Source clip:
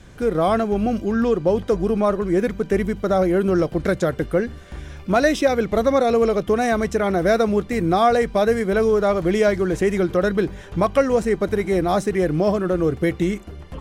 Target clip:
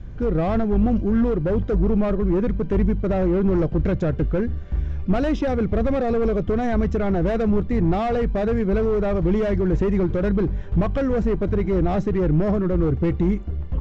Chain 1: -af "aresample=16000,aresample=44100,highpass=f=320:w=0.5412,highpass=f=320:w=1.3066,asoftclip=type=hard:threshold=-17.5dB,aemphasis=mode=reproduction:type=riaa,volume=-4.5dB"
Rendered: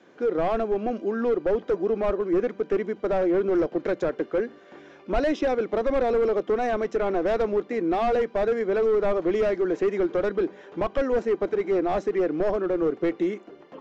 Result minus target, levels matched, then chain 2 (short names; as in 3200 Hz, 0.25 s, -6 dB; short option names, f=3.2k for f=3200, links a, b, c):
250 Hz band -4.0 dB
-af "aresample=16000,aresample=44100,asoftclip=type=hard:threshold=-17.5dB,aemphasis=mode=reproduction:type=riaa,volume=-4.5dB"